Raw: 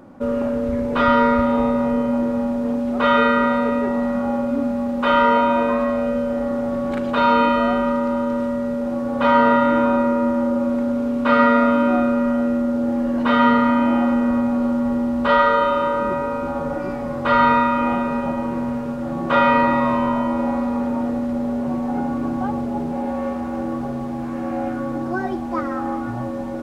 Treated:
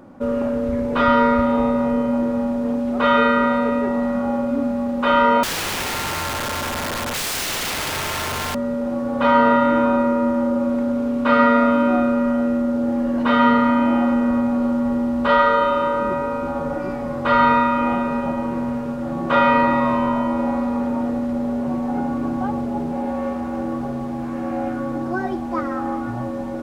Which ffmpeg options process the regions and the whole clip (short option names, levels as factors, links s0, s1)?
-filter_complex "[0:a]asettb=1/sr,asplit=3[s0][s1][s2];[s0]atrim=end=5.434[s3];[s1]atrim=start=5.43:end=8.55,asetpts=PTS-STARTPTS,afade=t=in:d=0.004:c=qsin,afade=t=out:st=3.116:d=0.004:c=qsin,lowshelf=f=180:g=-6,bandreject=f=1000:w=13,aeval=exprs='(mod(10*val(0)+1,2)-1)/10':c=same[s4];[s2]atrim=start=8.546[s5];[s3][s4]acrossfade=d=0.004:c1=hsin:c2=qsin[s6];[s6][s5]acrossfade=d=0.004:c1=qsin:c2=hsin"